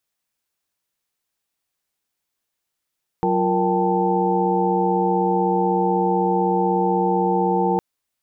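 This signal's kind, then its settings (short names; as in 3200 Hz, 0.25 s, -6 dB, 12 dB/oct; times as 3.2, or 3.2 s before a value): chord F#3/F4/A#4/G5/A5 sine, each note -23 dBFS 4.56 s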